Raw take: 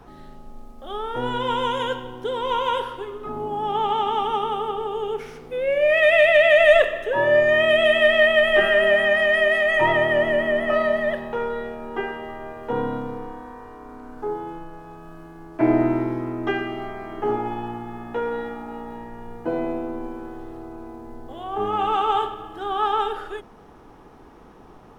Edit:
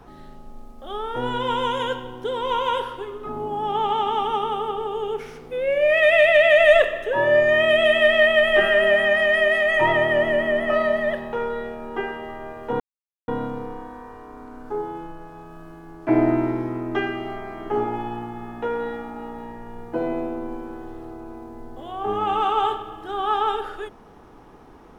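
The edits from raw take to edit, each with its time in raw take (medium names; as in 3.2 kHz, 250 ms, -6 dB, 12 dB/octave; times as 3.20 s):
12.80 s: insert silence 0.48 s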